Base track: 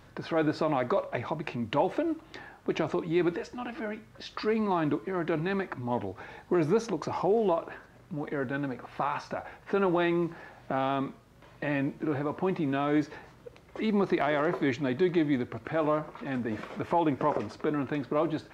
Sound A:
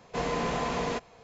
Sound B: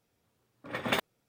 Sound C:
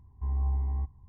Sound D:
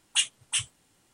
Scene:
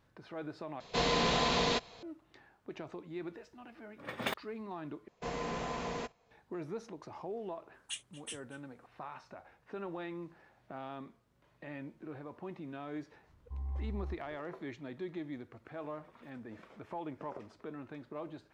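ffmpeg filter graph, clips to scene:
-filter_complex "[1:a]asplit=2[a][b];[2:a]asplit=2[c][d];[0:a]volume=-15.5dB[e];[a]equalizer=f=3.9k:t=o:w=0.87:g=12.5[f];[b]agate=range=-8dB:threshold=-49dB:ratio=16:release=100:detection=peak[g];[4:a]asplit=2[h][i];[i]adelay=233.2,volume=-16dB,highshelf=f=4k:g=-5.25[j];[h][j]amix=inputs=2:normalize=0[k];[d]acompressor=threshold=-47dB:ratio=6:attack=3.2:release=140:knee=1:detection=peak[l];[e]asplit=3[m][n][o];[m]atrim=end=0.804[p];[f]atrim=end=1.23,asetpts=PTS-STARTPTS,volume=-1dB[q];[n]atrim=start=2.026:end=5.084[r];[g]atrim=end=1.23,asetpts=PTS-STARTPTS,volume=-8dB[s];[o]atrim=start=6.306[t];[c]atrim=end=1.28,asetpts=PTS-STARTPTS,volume=-6.5dB,afade=t=in:d=0.004:c=hsin,afade=t=out:st=1.276:d=0.004:c=hsin,adelay=3340[u];[k]atrim=end=1.13,asetpts=PTS-STARTPTS,volume=-17dB,afade=t=in:d=0.004:c=hsin,afade=t=out:st=1.126:d=0.004:c=hsin,adelay=7740[v];[3:a]atrim=end=1.08,asetpts=PTS-STARTPTS,volume=-10dB,afade=t=in:d=0.004:c=hsin,afade=t=out:st=1.076:d=0.004:c=hsin,adelay=13290[w];[l]atrim=end=1.28,asetpts=PTS-STARTPTS,volume=-18dB,afade=t=in:d=0.004:c=hsin,afade=t=out:st=1.276:d=0.004:c=hsin,adelay=15300[x];[p][q]acrossfade=d=0.004:c1=hsin:c2=hsin[y];[y][r]acrossfade=d=0.004:c1=hsin:c2=hsin[z];[z][s]acrossfade=d=0.004:c1=hsin:c2=hsin[aa];[aa][t]acrossfade=d=0.004:c1=hsin:c2=hsin[ab];[ab][u][v][w][x]amix=inputs=5:normalize=0"

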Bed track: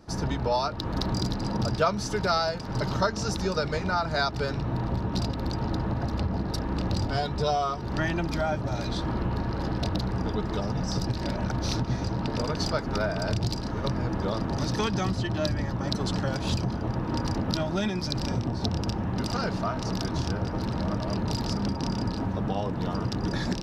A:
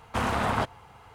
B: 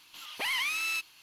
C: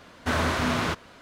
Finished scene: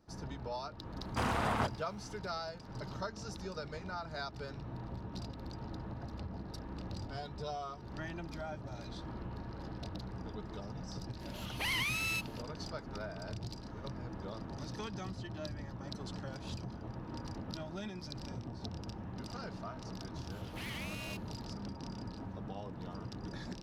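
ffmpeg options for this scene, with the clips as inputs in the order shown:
-filter_complex "[2:a]asplit=2[a][b];[0:a]volume=-15dB[c];[b]aeval=exprs='val(0)*sgn(sin(2*PI*140*n/s))':c=same[d];[1:a]atrim=end=1.14,asetpts=PTS-STARTPTS,volume=-6.5dB,afade=t=in:d=0.004:c=hsin,afade=t=out:st=1.136:d=0.004:c=hsin,adelay=1020[e];[a]atrim=end=1.22,asetpts=PTS-STARTPTS,volume=-4dB,afade=t=in:d=0.004:c=hsin,afade=t=out:st=1.216:d=0.004:c=hsin,adelay=11200[f];[d]atrim=end=1.22,asetpts=PTS-STARTPTS,volume=-14.5dB,afade=t=in:d=0.004:c=hsin,afade=t=out:st=1.216:d=0.004:c=hsin,adelay=20160[g];[c][e][f][g]amix=inputs=4:normalize=0"

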